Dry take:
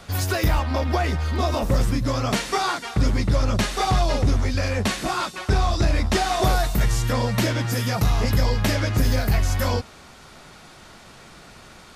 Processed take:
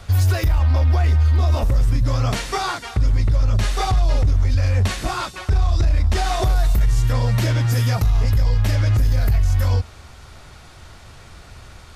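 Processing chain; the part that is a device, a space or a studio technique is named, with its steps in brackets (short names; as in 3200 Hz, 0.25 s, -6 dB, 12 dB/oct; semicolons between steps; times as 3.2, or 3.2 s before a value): car stereo with a boomy subwoofer (resonant low shelf 130 Hz +10.5 dB, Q 1.5; limiter -10.5 dBFS, peak gain reduction 11 dB)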